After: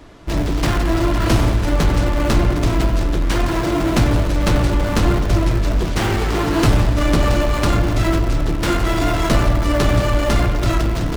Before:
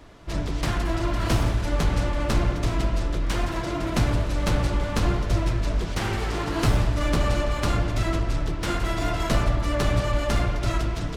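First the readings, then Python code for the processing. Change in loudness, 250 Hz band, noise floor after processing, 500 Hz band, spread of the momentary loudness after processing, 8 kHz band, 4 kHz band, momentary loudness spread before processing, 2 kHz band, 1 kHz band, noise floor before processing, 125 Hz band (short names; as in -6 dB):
+7.5 dB, +9.5 dB, -20 dBFS, +8.0 dB, 3 LU, +7.0 dB, +6.5 dB, 4 LU, +7.0 dB, +7.0 dB, -29 dBFS, +7.0 dB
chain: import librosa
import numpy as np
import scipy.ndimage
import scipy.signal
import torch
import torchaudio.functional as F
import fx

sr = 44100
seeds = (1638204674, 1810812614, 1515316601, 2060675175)

p1 = fx.schmitt(x, sr, flips_db=-36.5)
p2 = x + (p1 * librosa.db_to_amplitude(-10.5))
p3 = fx.peak_eq(p2, sr, hz=310.0, db=3.5, octaves=0.67)
y = p3 * librosa.db_to_amplitude(5.0)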